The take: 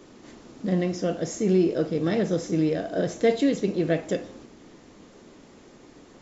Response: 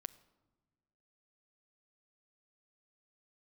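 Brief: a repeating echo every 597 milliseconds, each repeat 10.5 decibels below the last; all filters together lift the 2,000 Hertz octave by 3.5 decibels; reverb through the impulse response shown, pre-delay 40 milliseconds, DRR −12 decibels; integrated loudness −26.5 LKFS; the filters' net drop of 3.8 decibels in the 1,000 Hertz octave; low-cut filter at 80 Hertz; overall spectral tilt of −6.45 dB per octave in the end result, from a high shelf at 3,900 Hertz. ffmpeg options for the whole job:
-filter_complex "[0:a]highpass=80,equalizer=frequency=1000:width_type=o:gain=-8.5,equalizer=frequency=2000:width_type=o:gain=7.5,highshelf=frequency=3900:gain=-5,aecho=1:1:597|1194|1791:0.299|0.0896|0.0269,asplit=2[link_01][link_02];[1:a]atrim=start_sample=2205,adelay=40[link_03];[link_02][link_03]afir=irnorm=-1:irlink=0,volume=16dB[link_04];[link_01][link_04]amix=inputs=2:normalize=0,volume=-12.5dB"

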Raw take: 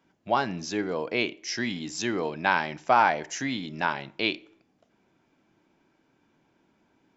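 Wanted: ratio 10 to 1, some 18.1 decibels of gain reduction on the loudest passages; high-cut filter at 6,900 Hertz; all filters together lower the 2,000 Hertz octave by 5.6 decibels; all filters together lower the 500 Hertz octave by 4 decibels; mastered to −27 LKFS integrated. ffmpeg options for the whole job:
ffmpeg -i in.wav -af "lowpass=6900,equalizer=frequency=500:width_type=o:gain=-5,equalizer=frequency=2000:width_type=o:gain=-7.5,acompressor=threshold=-37dB:ratio=10,volume=14.5dB" out.wav

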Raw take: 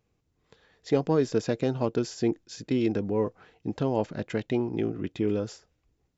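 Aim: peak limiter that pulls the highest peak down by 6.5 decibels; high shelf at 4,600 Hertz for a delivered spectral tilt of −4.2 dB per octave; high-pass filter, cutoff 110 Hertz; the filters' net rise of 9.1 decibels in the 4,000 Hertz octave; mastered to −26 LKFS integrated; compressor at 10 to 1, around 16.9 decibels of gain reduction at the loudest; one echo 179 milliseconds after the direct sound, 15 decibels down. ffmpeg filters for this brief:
ffmpeg -i in.wav -af "highpass=110,equalizer=frequency=4000:width_type=o:gain=6.5,highshelf=frequency=4600:gain=9,acompressor=threshold=-36dB:ratio=10,alimiter=level_in=7.5dB:limit=-24dB:level=0:latency=1,volume=-7.5dB,aecho=1:1:179:0.178,volume=17dB" out.wav

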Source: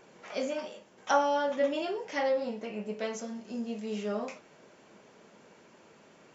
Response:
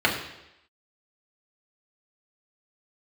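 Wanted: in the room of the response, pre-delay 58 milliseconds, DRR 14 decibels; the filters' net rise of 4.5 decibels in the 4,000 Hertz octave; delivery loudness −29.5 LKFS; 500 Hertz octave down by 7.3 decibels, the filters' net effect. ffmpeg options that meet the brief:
-filter_complex "[0:a]equalizer=frequency=500:width_type=o:gain=-8.5,equalizer=frequency=4000:width_type=o:gain=6.5,asplit=2[link_01][link_02];[1:a]atrim=start_sample=2205,adelay=58[link_03];[link_02][link_03]afir=irnorm=-1:irlink=0,volume=-31dB[link_04];[link_01][link_04]amix=inputs=2:normalize=0,volume=6dB"

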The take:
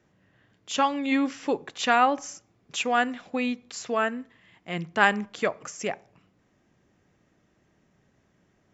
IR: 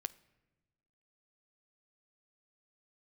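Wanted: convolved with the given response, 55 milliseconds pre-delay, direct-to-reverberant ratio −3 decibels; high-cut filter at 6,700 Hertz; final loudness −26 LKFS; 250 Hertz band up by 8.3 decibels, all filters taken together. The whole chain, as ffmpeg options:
-filter_complex "[0:a]lowpass=6700,equalizer=frequency=250:width_type=o:gain=9,asplit=2[link_01][link_02];[1:a]atrim=start_sample=2205,adelay=55[link_03];[link_02][link_03]afir=irnorm=-1:irlink=0,volume=5dB[link_04];[link_01][link_04]amix=inputs=2:normalize=0,volume=-7.5dB"

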